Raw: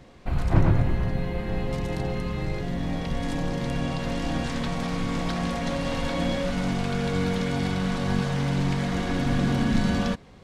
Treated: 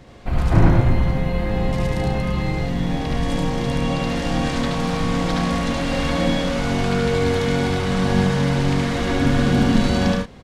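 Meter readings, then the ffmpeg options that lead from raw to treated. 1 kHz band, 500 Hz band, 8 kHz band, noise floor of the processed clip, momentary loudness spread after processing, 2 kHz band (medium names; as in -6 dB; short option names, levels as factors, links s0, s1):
+7.0 dB, +7.5 dB, +6.5 dB, -25 dBFS, 6 LU, +6.5 dB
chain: -af "aecho=1:1:72.89|105:0.794|0.501,volume=1.58"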